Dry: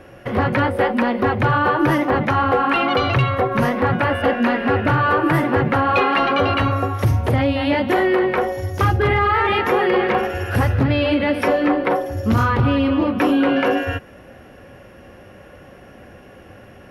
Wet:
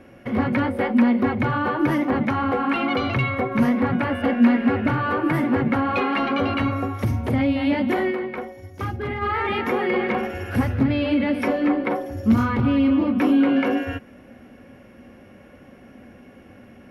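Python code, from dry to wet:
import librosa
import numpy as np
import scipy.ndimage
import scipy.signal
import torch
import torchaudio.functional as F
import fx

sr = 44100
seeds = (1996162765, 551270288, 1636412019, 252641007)

y = fx.small_body(x, sr, hz=(240.0, 2200.0), ring_ms=50, db=12)
y = fx.upward_expand(y, sr, threshold_db=-24.0, expansion=1.5, at=(8.1, 9.21), fade=0.02)
y = y * 10.0 ** (-7.0 / 20.0)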